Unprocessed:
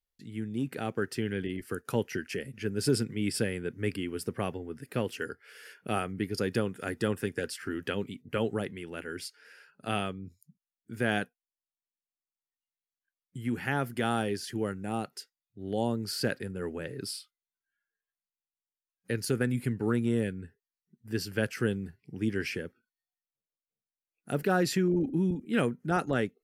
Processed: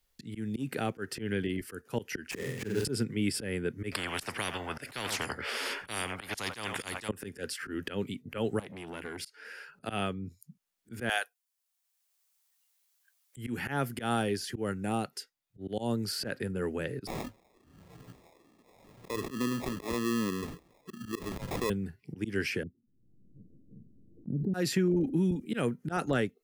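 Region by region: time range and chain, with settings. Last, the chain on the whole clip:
2.31–2.85 s: dead-time distortion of 0.11 ms + flutter echo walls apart 8 m, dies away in 0.7 s
3.92–7.09 s: low-pass 1.8 kHz 6 dB/octave + delay 87 ms -21 dB + spectrum-flattening compressor 10:1
8.59–9.23 s: compression 5:1, threshold -39 dBFS + transformer saturation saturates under 1.2 kHz
11.09–13.37 s: high-pass 620 Hz 24 dB/octave + treble shelf 4.1 kHz +10 dB
17.07–21.70 s: wah-wah 1.2 Hz 250–1400 Hz, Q 2.7 + sample-rate reducer 1.5 kHz + level flattener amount 70%
22.63–24.54 s: inverse Chebyshev low-pass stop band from 950 Hz, stop band 60 dB + swell ahead of each attack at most 32 dB/s
whole clip: slow attack 142 ms; three bands compressed up and down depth 40%; trim +2 dB

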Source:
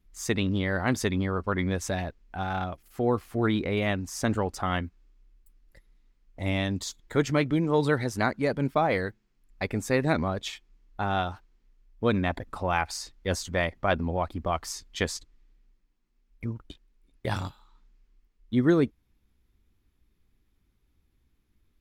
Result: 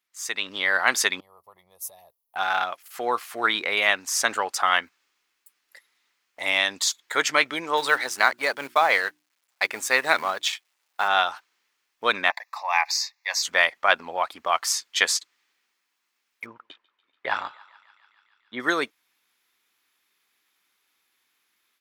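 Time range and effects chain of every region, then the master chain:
1.20–2.36 s: FFT filter 120 Hz 0 dB, 460 Hz -14 dB, 1.2 kHz -13 dB, 2.4 kHz -25 dB, 5.1 kHz -18 dB, 8.1 kHz -15 dB, 11 kHz +5 dB + compression 4:1, threshold -38 dBFS + static phaser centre 630 Hz, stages 4
7.77–11.08 s: companding laws mixed up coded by A + hum notches 60/120/180/240/300/360 Hz
12.30–13.43 s: high-pass 750 Hz + static phaser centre 2.1 kHz, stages 8
16.46–18.60 s: low-pass 2.1 kHz + thinning echo 144 ms, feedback 83%, high-pass 800 Hz, level -22.5 dB
whole clip: high-pass 1.1 kHz 12 dB/octave; level rider gain up to 10.5 dB; trim +2 dB

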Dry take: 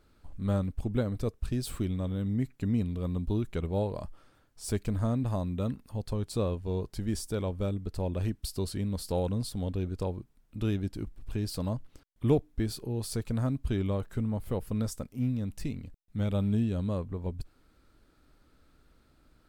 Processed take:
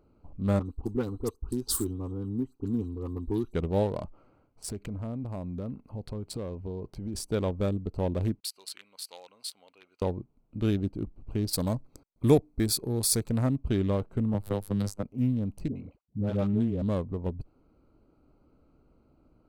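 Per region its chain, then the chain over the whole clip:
0.59–3.54 s: treble shelf 3.9 kHz +10.5 dB + static phaser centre 600 Hz, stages 6 + phase dispersion highs, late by 73 ms, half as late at 2.4 kHz
4.04–7.15 s: peaking EQ 1.9 kHz +6.5 dB 0.85 oct + compression, threshold -34 dBFS
8.40–10.02 s: expander -45 dBFS + resonant high-pass 2 kHz, resonance Q 1.5
11.53–13.30 s: Butterworth band-stop 2.9 kHz, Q 5.4 + treble shelf 4.3 kHz +12 dB
14.34–15.03 s: robot voice 101 Hz + three bands compressed up and down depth 100%
15.68–16.82 s: high-pass 48 Hz 24 dB/octave + tone controls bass -3 dB, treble -7 dB + phase dispersion highs, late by 80 ms, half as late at 630 Hz
whole clip: local Wiener filter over 25 samples; bass shelf 76 Hz -9.5 dB; trim +5 dB

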